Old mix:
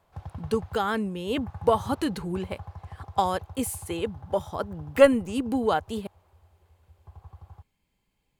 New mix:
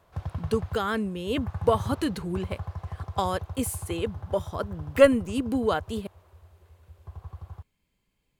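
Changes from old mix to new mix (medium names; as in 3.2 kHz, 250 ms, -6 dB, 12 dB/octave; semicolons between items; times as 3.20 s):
background +6.0 dB; master: add peaking EQ 820 Hz -7.5 dB 0.25 oct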